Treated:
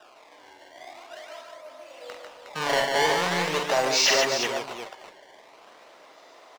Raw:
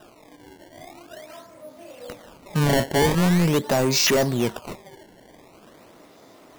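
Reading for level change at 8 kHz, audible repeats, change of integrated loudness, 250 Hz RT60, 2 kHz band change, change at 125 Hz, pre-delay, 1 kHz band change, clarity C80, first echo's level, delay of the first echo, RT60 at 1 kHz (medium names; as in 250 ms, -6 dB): -1.0 dB, 3, -2.5 dB, no reverb, +2.5 dB, -18.0 dB, no reverb, +2.0 dB, no reverb, -5.5 dB, 45 ms, no reverb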